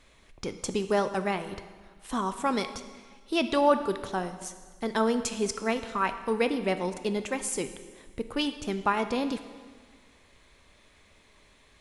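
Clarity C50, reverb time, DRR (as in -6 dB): 11.0 dB, 1.6 s, 9.0 dB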